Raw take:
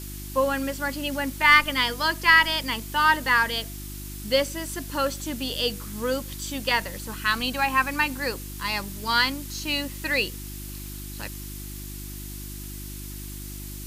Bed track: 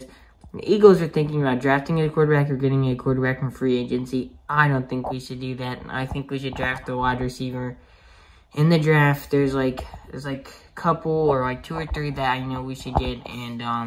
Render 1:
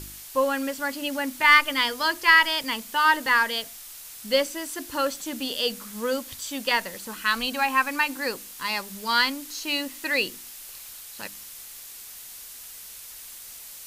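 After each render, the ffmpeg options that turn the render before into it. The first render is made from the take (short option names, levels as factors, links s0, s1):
-af "bandreject=f=50:t=h:w=4,bandreject=f=100:t=h:w=4,bandreject=f=150:t=h:w=4,bandreject=f=200:t=h:w=4,bandreject=f=250:t=h:w=4,bandreject=f=300:t=h:w=4,bandreject=f=350:t=h:w=4"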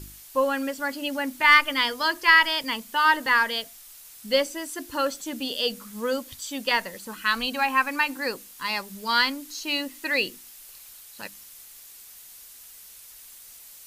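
-af "afftdn=nr=6:nf=-42"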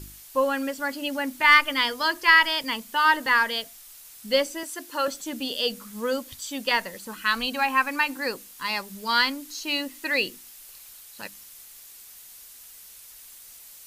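-filter_complex "[0:a]asettb=1/sr,asplit=3[s0][s1][s2];[s0]atrim=end=4.634[s3];[s1]atrim=start=4.63:end=5.08,asetpts=PTS-STARTPTS,afade=t=in:d=0.004:c=qsin,afade=t=out:st=0.446:d=0.004:c=qsin,highpass=370[s4];[s2]atrim=start=5.076[s5];[s3][s4]acrossfade=d=0.004:c1=hsin:c2=qsin[s6];[s6][s5]acrossfade=d=0.004:c1=qsin:c2=hsin"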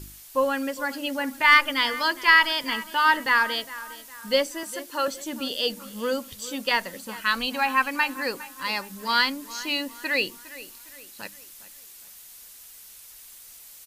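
-filter_complex "[0:a]asplit=2[s0][s1];[s1]adelay=409,lowpass=f=3900:p=1,volume=0.15,asplit=2[s2][s3];[s3]adelay=409,lowpass=f=3900:p=1,volume=0.45,asplit=2[s4][s5];[s5]adelay=409,lowpass=f=3900:p=1,volume=0.45,asplit=2[s6][s7];[s7]adelay=409,lowpass=f=3900:p=1,volume=0.45[s8];[s0][s2][s4][s6][s8]amix=inputs=5:normalize=0"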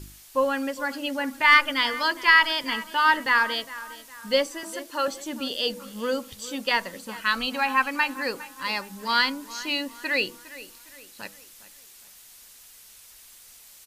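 -af "highshelf=f=12000:g=-8.5,bandreject=f=163.3:t=h:w=4,bandreject=f=326.6:t=h:w=4,bandreject=f=489.9:t=h:w=4,bandreject=f=653.2:t=h:w=4,bandreject=f=816.5:t=h:w=4,bandreject=f=979.8:t=h:w=4,bandreject=f=1143.1:t=h:w=4,bandreject=f=1306.4:t=h:w=4,bandreject=f=1469.7:t=h:w=4"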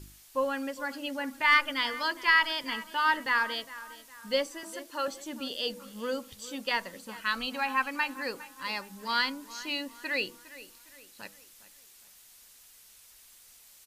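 -af "volume=0.501"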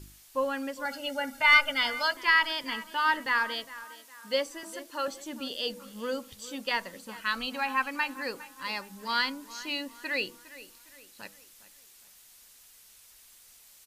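-filter_complex "[0:a]asettb=1/sr,asplit=3[s0][s1][s2];[s0]atrim=end=0.854[s3];[s1]atrim=start=0.85:end=2.17,asetpts=PTS-STARTPTS,afade=t=in:d=0.004:c=qsin,afade=t=out:st=1.316:d=0.004:c=qsin,aecho=1:1:1.4:0.95,atrim=end_sample=58212[s4];[s2]atrim=start=2.166[s5];[s3][s4]acrossfade=d=0.004:c1=hsin:c2=qsin[s6];[s6][s5]acrossfade=d=0.004:c1=qsin:c2=hsin,asettb=1/sr,asplit=3[s7][s8][s9];[s7]atrim=end=3.844[s10];[s8]atrim=start=3.84:end=4.47,asetpts=PTS-STARTPTS,afade=t=in:d=0.004:c=qsin,afade=t=out:st=0.626:d=0.004:c=qsin,highpass=250[s11];[s9]atrim=start=4.466[s12];[s10][s11]acrossfade=d=0.004:c1=hsin:c2=qsin[s13];[s13][s12]acrossfade=d=0.004:c1=qsin:c2=hsin"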